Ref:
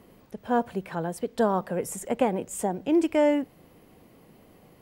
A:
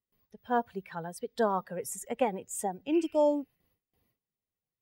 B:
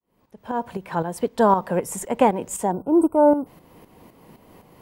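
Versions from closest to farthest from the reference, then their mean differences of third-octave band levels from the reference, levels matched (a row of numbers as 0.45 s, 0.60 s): B, A; 3.5 dB, 8.0 dB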